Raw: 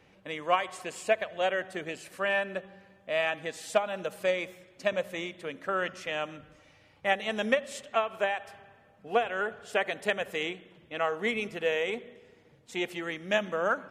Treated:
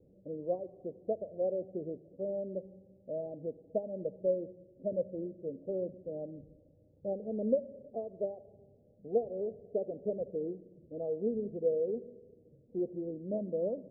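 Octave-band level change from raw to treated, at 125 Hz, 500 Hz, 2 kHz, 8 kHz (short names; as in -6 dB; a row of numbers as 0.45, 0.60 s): 0.0 dB, -3.0 dB, under -40 dB, under -35 dB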